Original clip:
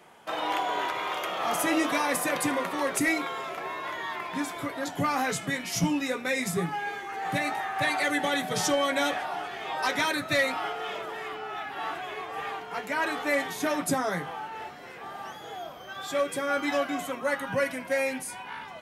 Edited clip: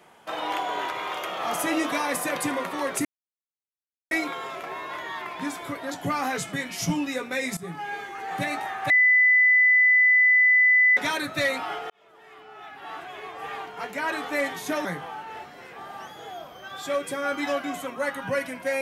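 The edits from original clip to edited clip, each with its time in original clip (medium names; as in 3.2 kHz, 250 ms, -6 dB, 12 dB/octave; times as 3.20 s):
3.05 s: insert silence 1.06 s
6.51–6.84 s: fade in, from -15.5 dB
7.84–9.91 s: bleep 2 kHz -14.5 dBFS
10.84–12.55 s: fade in linear
13.79–14.10 s: delete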